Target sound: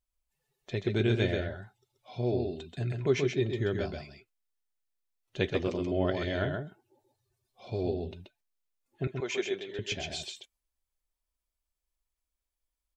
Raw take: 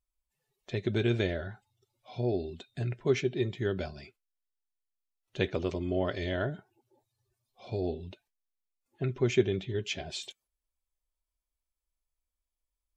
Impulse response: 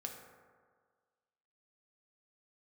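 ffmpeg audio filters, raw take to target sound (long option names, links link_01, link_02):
-filter_complex "[0:a]asettb=1/sr,asplit=3[link_01][link_02][link_03];[link_01]atrim=end=9.074[link_04];[link_02]atrim=start=9.07:end=9.79,asetpts=PTS-STARTPTS,afade=type=in:duration=0.004:curve=qsin,afade=type=out:start_time=0.716:duration=0.004:curve=qsin,highpass=540[link_05];[link_03]atrim=start=9.786[link_06];[link_04][link_05]acrossfade=duration=0.004:curve1=hsin:curve2=qsin[link_07];[link_07][link_06]acrossfade=duration=0.004:curve1=qsin:curve2=hsin,aecho=1:1:131:0.596"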